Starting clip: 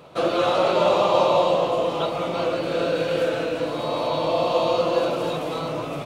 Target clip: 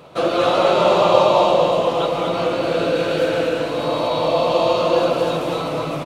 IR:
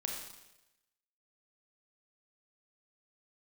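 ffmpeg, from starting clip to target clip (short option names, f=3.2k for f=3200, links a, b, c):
-af "aecho=1:1:142.9|244.9:0.282|0.562,volume=3dB"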